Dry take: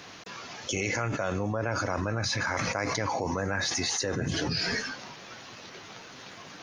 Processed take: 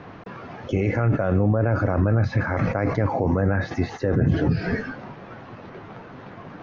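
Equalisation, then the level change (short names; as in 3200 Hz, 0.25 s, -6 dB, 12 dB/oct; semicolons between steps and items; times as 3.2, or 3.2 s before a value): low shelf 220 Hz +7.5 dB; dynamic EQ 990 Hz, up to -7 dB, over -49 dBFS, Q 3.1; LPF 1300 Hz 12 dB/oct; +7.0 dB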